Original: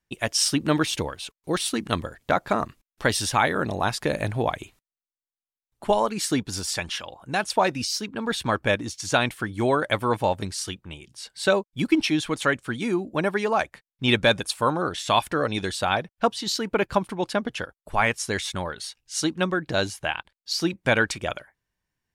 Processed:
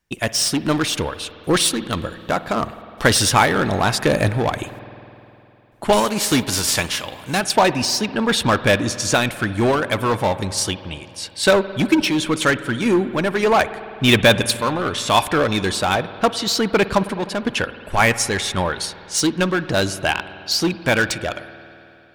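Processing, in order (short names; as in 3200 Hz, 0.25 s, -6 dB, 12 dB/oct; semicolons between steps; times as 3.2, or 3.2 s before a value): 5.92–7.39 spectral whitening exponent 0.6; in parallel at -3.5 dB: wavefolder -23.5 dBFS; on the sum: random-step tremolo; spring tank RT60 3 s, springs 51 ms, chirp 50 ms, DRR 13.5 dB; gain +6.5 dB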